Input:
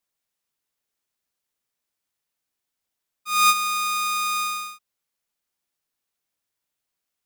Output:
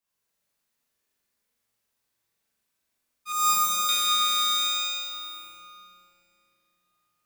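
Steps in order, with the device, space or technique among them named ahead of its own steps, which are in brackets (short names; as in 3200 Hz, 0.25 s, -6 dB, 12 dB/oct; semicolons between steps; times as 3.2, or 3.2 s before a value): tunnel (flutter echo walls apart 7.3 m, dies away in 0.75 s; reverb RT60 3.2 s, pre-delay 13 ms, DRR -7 dB); 3.32–3.89 band shelf 2500 Hz -11.5 dB; gain -5.5 dB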